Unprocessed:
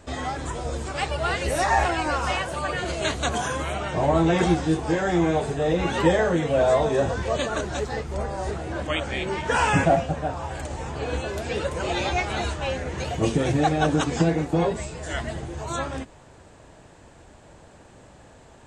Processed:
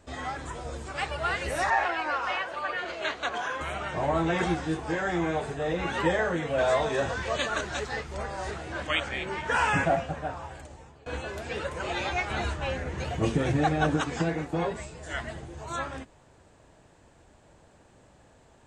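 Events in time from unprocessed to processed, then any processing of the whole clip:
1.70–3.61 s: three-band isolator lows -16 dB, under 280 Hz, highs -20 dB, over 5.6 kHz
6.58–9.09 s: peaking EQ 4.3 kHz +6 dB 2.7 oct
10.30–11.06 s: fade out, to -21.5 dB
12.30–13.97 s: bass shelf 370 Hz +6 dB
whole clip: dynamic bell 1.6 kHz, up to +7 dB, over -39 dBFS, Q 0.72; trim -8 dB

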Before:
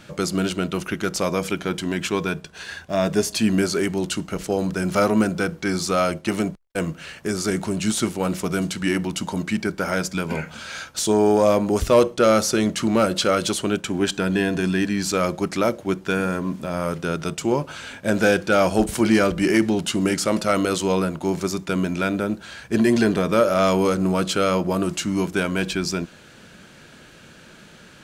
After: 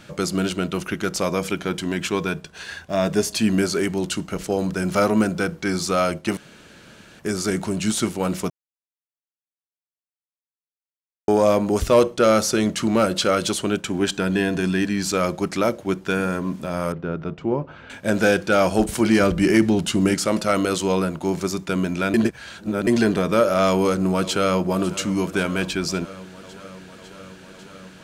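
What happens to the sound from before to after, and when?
6.37–7.19 s: room tone
8.50–11.28 s: mute
16.92–17.90 s: tape spacing loss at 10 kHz 44 dB
19.20–20.15 s: bass shelf 190 Hz +6.5 dB
22.14–22.87 s: reverse
23.68–24.59 s: echo throw 550 ms, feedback 80%, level -16.5 dB

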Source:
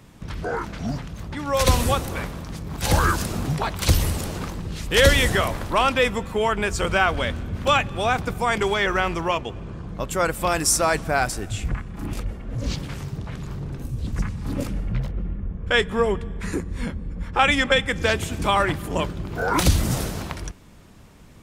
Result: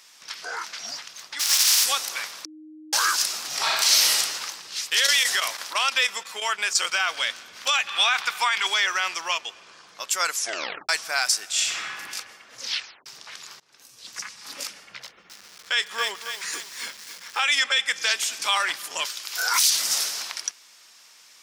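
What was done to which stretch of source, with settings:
1.39–1.84 s: spectral contrast reduction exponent 0.22
2.45–2.93 s: bleep 310 Hz -18.5 dBFS
3.47–4.17 s: reverb throw, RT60 1.2 s, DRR -5 dB
4.75–6.93 s: square tremolo 6 Hz, depth 60%, duty 90%
7.87–8.67 s: high-order bell 1.8 kHz +9.5 dB 2.5 oct
10.26 s: tape stop 0.63 s
11.49–11.94 s: reverb throw, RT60 1.6 s, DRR -7 dB
12.61 s: tape stop 0.45 s
13.60–14.17 s: fade in linear, from -22.5 dB
15.02–17.62 s: bit-crushed delay 274 ms, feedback 55%, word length 6-bit, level -10 dB
19.05–19.70 s: tilt EQ +4 dB/octave
whole clip: Bessel high-pass 1.9 kHz, order 2; peak limiter -17.5 dBFS; peaking EQ 5.3 kHz +10 dB 0.8 oct; trim +4.5 dB

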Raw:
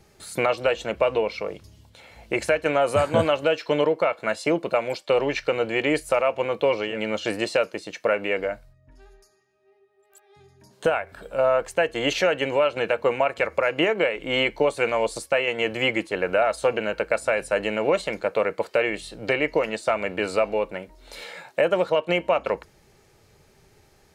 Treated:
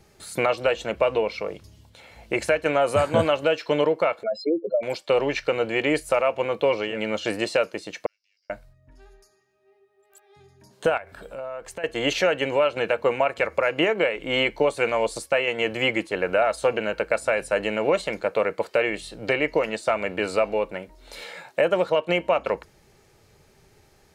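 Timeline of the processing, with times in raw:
4.23–4.83 s: spectral contrast enhancement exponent 3.8
8.06–8.50 s: Butterworth band-pass 5.3 kHz, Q 6.7
10.97–11.84 s: compression 3:1, threshold -35 dBFS

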